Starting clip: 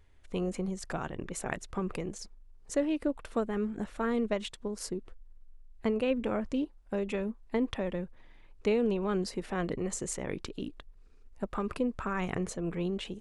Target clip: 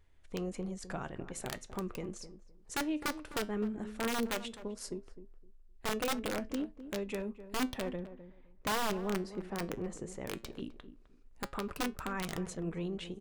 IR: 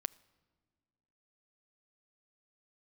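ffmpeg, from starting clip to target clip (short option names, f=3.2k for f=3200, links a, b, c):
-filter_complex "[0:a]asettb=1/sr,asplit=3[a][b][c];[a]atrim=end=7.964[d];[b]atrim=start=7.96:end=10.21,asetpts=PTS-STARTPTS,afade=t=in:d=0.004:c=qsin,afade=t=out:st=2.246:d=0.004:c=qsin,highshelf=f=2.4k:g=-11[e];[c]atrim=start=10.206[f];[d][e]acrossfade=d=0.004:c1=hsin:c2=qsin[g];[g][f]acrossfade=d=0.004:c1=qsin:c2=hsin,aeval=exprs='(mod(13.3*val(0)+1,2)-1)/13.3':c=same,flanger=delay=5.9:depth=4.2:regen=81:speed=0.16:shape=triangular,asplit=2[h][i];[i]adelay=257,lowpass=f=990:p=1,volume=-12dB,asplit=2[j][k];[k]adelay=257,lowpass=f=990:p=1,volume=0.2,asplit=2[l][m];[m]adelay=257,lowpass=f=990:p=1,volume=0.2[n];[h][j][l][n]amix=inputs=4:normalize=0"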